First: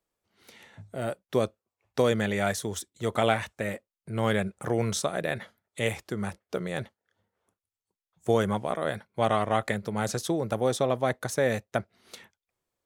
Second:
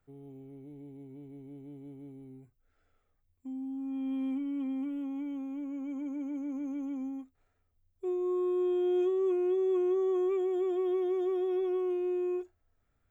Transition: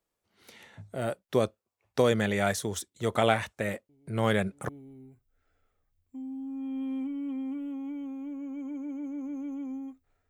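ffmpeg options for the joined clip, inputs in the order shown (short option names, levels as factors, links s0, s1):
-filter_complex "[1:a]asplit=2[s0][s1];[0:a]apad=whole_dur=10.29,atrim=end=10.29,atrim=end=4.692[s2];[s1]atrim=start=1.998:end=7.6[s3];[s0]atrim=start=1.2:end=2,asetpts=PTS-STARTPTS,volume=0.168,afade=t=in:d=0.004:c=hsin,afade=t=out:st=0.796:d=0.004:c=hsin,adelay=171549S[s4];[s2][s3]acrossfade=d=0.004:c1=hsin:c2=hsin[s5];[s5][s4]amix=inputs=2:normalize=0"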